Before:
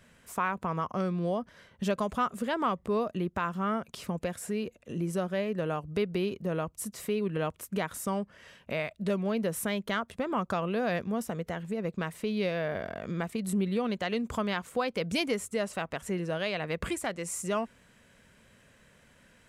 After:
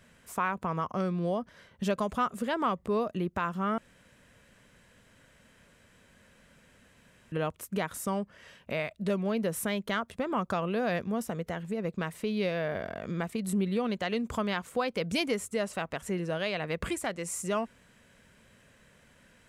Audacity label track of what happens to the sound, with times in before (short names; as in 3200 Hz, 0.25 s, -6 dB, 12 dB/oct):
3.780000	7.320000	room tone